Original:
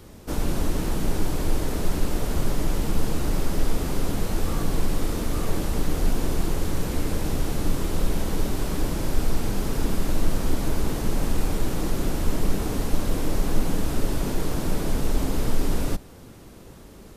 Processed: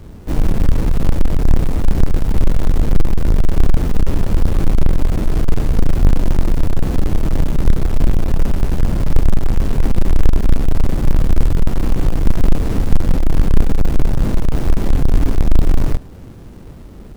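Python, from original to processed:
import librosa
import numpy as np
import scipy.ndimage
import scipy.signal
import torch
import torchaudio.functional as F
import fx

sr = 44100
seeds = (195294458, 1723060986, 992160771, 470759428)

y = fx.halfwave_hold(x, sr)
y = fx.low_shelf(y, sr, hz=410.0, db=10.0)
y = y * librosa.db_to_amplitude(-4.0)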